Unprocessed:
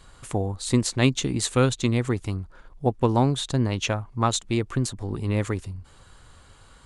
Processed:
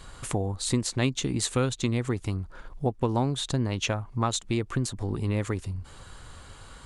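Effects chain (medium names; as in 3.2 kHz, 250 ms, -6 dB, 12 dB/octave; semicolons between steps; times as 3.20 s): compression 2:1, threshold -35 dBFS, peak gain reduction 11.5 dB; trim +5 dB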